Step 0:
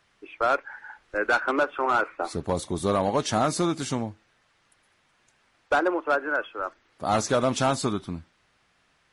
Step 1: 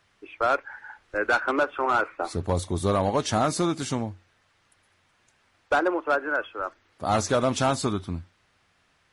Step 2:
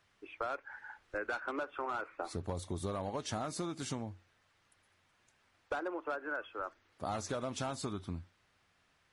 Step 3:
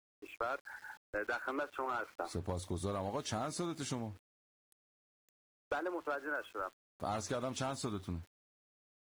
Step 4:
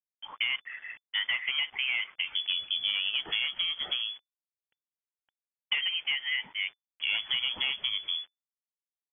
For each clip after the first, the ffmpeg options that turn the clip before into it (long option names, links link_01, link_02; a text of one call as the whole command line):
ffmpeg -i in.wav -af "equalizer=frequency=91:width_type=o:width=0.28:gain=9.5" out.wav
ffmpeg -i in.wav -af "acompressor=threshold=-28dB:ratio=6,volume=-6.5dB" out.wav
ffmpeg -i in.wav -af "aeval=exprs='val(0)*gte(abs(val(0)),0.00158)':channel_layout=same" out.wav
ffmpeg -i in.wav -af "lowpass=frequency=3000:width_type=q:width=0.5098,lowpass=frequency=3000:width_type=q:width=0.6013,lowpass=frequency=3000:width_type=q:width=0.9,lowpass=frequency=3000:width_type=q:width=2.563,afreqshift=-3500,volume=7.5dB" out.wav